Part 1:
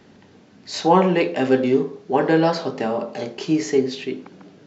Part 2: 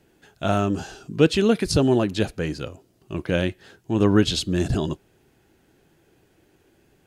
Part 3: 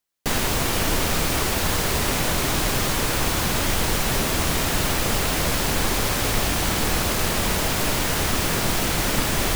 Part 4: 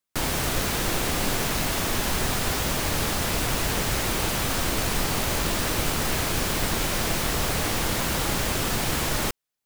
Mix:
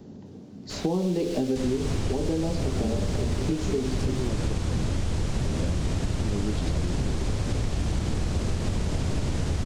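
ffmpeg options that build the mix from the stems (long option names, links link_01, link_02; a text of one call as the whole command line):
ffmpeg -i stem1.wav -i stem2.wav -i stem3.wav -i stem4.wav -filter_complex "[0:a]equalizer=frequency=2000:width=0.65:gain=-14.5,volume=1dB,asplit=2[link_01][link_02];[1:a]adelay=2300,volume=-11dB[link_03];[2:a]lowpass=frequency=8400:width=0.5412,lowpass=frequency=8400:width=1.3066,equalizer=frequency=84:width=0.99:gain=6.5,adelay=1300,volume=-4.5dB[link_04];[3:a]equalizer=frequency=4400:width=0.41:gain=10.5,adynamicsmooth=sensitivity=6:basefreq=1900,adelay=100,volume=-17dB[link_05];[link_02]apad=whole_len=430058[link_06];[link_05][link_06]sidechaingate=range=-33dB:threshold=-39dB:ratio=16:detection=peak[link_07];[link_01][link_03][link_04][link_07]amix=inputs=4:normalize=0,acrossover=split=630|3000[link_08][link_09][link_10];[link_08]acompressor=threshold=-26dB:ratio=4[link_11];[link_09]acompressor=threshold=-42dB:ratio=4[link_12];[link_10]acompressor=threshold=-39dB:ratio=4[link_13];[link_11][link_12][link_13]amix=inputs=3:normalize=0,lowshelf=frequency=480:gain=8.5,acompressor=threshold=-22dB:ratio=6" out.wav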